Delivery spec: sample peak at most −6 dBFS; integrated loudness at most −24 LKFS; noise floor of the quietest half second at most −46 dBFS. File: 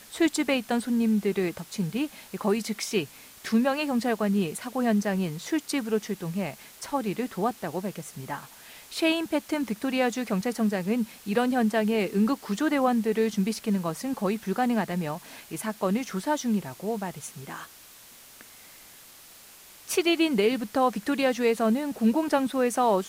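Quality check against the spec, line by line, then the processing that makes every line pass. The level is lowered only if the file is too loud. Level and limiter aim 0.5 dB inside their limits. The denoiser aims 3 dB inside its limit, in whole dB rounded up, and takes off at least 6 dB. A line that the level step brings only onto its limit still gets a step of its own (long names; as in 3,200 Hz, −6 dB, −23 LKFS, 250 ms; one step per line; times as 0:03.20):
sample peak −11.5 dBFS: in spec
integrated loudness −27.0 LKFS: in spec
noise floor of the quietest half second −50 dBFS: in spec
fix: no processing needed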